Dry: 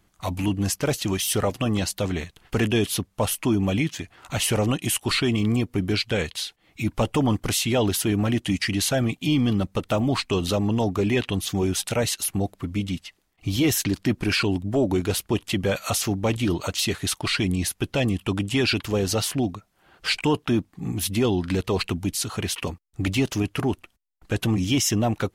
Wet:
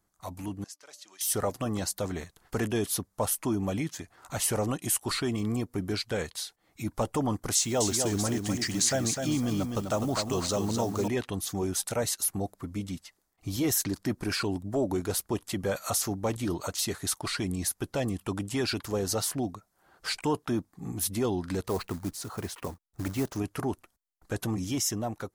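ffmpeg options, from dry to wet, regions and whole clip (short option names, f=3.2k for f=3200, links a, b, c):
-filter_complex "[0:a]asettb=1/sr,asplit=3[a][b][c];[a]atrim=end=0.644[d];[b]atrim=start=0.64:end=1.21,asetpts=PTS-STARTPTS,afade=t=in:d=0.004:c=qsin,afade=t=out:st=0.566:d=0.004:c=qsin,highpass=220,lowpass=4.1k,aderivative,bandreject=f=294.8:t=h:w=4,bandreject=f=589.6:t=h:w=4,bandreject=f=884.4:t=h:w=4,bandreject=f=1.1792k:t=h:w=4[e];[c]atrim=start=1.206[f];[d][e]acrossfade=d=0.004:c1=hsin:c2=qsin[g];[g][f]acrossfade=d=0.004:c1=qsin:c2=hsin,asettb=1/sr,asplit=3[h][i][j];[h]atrim=end=7.554[k];[i]atrim=start=7.55:end=11.08,asetpts=PTS-STARTPTS,afade=t=in:d=0.004:c=qsin,afade=t=out:st=3.526:d=0.004:c=qsin,lowpass=f=7.1k:t=q:w=2.3,acrusher=bits=8:dc=4:mix=0:aa=0.000001,aecho=1:1:253|506|759:0.531|0.127|0.0306,atrim=end_sample=155673[l];[j]atrim=start=11.076[m];[k][l]acrossfade=d=0.004:c1=hsin:c2=qsin[n];[n][m]acrossfade=d=0.004:c1=qsin:c2=hsin,asettb=1/sr,asplit=3[o][p][q];[o]atrim=end=21.684[r];[p]atrim=start=21.68:end=23.37,asetpts=PTS-STARTPTS,afade=t=in:d=0.004:c=qsin,afade=t=out:st=1.686:d=0.004:c=qsin,equalizer=f=13k:t=o:w=2.4:g=-11.5,acrusher=bits=4:mode=log:mix=0:aa=0.000001[s];[q]atrim=start=23.366[t];[r][s]acrossfade=d=0.004:c1=hsin:c2=qsin[u];[u][t]acrossfade=d=0.004:c1=qsin:c2=hsin,equalizer=f=2.8k:t=o:w=1.1:g=-14,dynaudnorm=f=380:g=5:m=5.5dB,lowshelf=f=500:g=-8.5,volume=-6dB"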